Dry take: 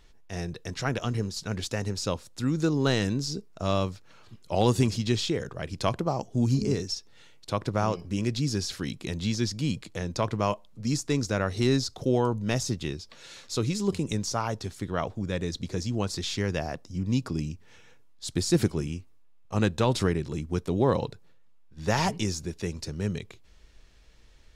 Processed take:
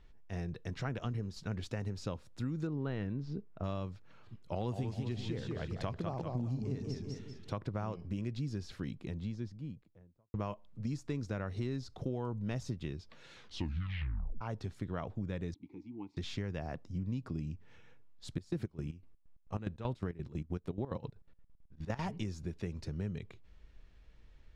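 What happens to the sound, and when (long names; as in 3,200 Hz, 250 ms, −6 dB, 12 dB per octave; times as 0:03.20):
0:02.67–0:03.64: low-pass filter 2,600 Hz
0:04.52–0:07.57: feedback echo with a swinging delay time 195 ms, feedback 41%, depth 136 cents, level −6 dB
0:08.32–0:10.34: fade out and dull
0:13.33: tape stop 1.08 s
0:15.54–0:16.17: formant filter u
0:18.32–0:22.00: square-wave tremolo 3.4 Hz → 11 Hz
whole clip: bass and treble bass +5 dB, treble −12 dB; downward compressor, threshold −27 dBFS; level −6.5 dB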